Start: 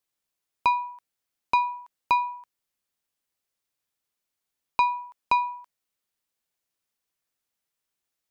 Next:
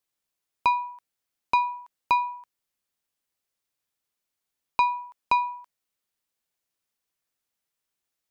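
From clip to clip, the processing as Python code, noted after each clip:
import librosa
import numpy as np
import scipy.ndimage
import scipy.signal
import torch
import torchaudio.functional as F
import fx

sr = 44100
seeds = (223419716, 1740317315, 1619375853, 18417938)

y = x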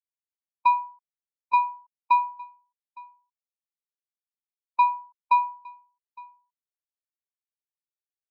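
y = x + 10.0 ** (-16.0 / 20.0) * np.pad(x, (int(861 * sr / 1000.0), 0))[:len(x)]
y = fx.spectral_expand(y, sr, expansion=1.5)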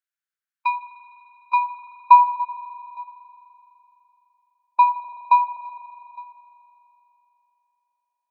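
y = fx.filter_sweep_highpass(x, sr, from_hz=1500.0, to_hz=660.0, start_s=1.18, end_s=3.52, q=4.6)
y = fx.rev_spring(y, sr, rt60_s=3.4, pass_ms=(41,), chirp_ms=40, drr_db=10.0)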